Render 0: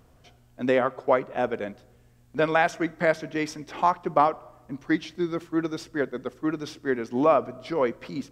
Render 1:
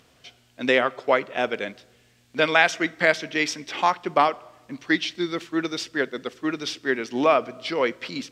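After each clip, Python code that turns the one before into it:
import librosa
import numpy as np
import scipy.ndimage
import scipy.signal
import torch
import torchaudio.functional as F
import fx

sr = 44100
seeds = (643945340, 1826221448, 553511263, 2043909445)

y = fx.weighting(x, sr, curve='D')
y = F.gain(torch.from_numpy(y), 1.0).numpy()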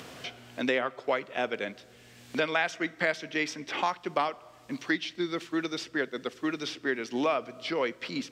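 y = fx.band_squash(x, sr, depth_pct=70)
y = F.gain(torch.from_numpy(y), -7.0).numpy()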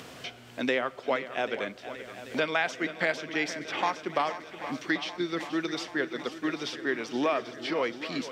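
y = fx.echo_swing(x, sr, ms=788, ratio=1.5, feedback_pct=60, wet_db=-13)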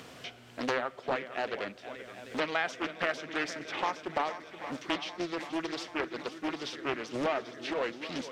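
y = fx.doppler_dist(x, sr, depth_ms=0.57)
y = F.gain(torch.from_numpy(y), -3.5).numpy()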